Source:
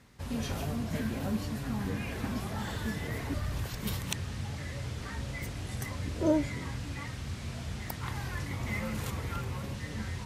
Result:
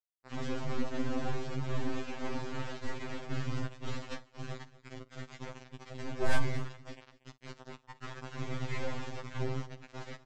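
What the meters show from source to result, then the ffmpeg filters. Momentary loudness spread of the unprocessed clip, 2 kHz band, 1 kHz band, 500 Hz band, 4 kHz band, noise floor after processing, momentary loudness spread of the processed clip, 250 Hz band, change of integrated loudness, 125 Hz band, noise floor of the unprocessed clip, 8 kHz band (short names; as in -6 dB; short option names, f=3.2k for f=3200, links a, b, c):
6 LU, -2.5 dB, -1.5 dB, -2.0 dB, -4.5 dB, -67 dBFS, 14 LU, -6.0 dB, -4.5 dB, -5.0 dB, -41 dBFS, -9.0 dB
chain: -filter_complex "[0:a]flanger=delay=2.9:depth=4.5:regen=12:speed=1:shape=sinusoidal,agate=range=-33dB:threshold=-34dB:ratio=3:detection=peak,adynamicequalizer=threshold=0.00224:dfrequency=340:dqfactor=0.8:tfrequency=340:tqfactor=0.8:attack=5:release=100:ratio=0.375:range=2.5:mode=boostabove:tftype=bell,acompressor=mode=upward:threshold=-42dB:ratio=2.5,aresample=16000,acrusher=bits=4:dc=4:mix=0:aa=0.000001,aresample=44100,asoftclip=type=hard:threshold=-22.5dB,aemphasis=mode=reproduction:type=75fm,asplit=2[a][b];[b]asoftclip=type=tanh:threshold=-36.5dB,volume=-8dB[c];[a][c]amix=inputs=2:normalize=0,aecho=1:1:52|237:0.112|0.119,afftfilt=real='re*2.45*eq(mod(b,6),0)':imag='im*2.45*eq(mod(b,6),0)':win_size=2048:overlap=0.75,volume=5dB"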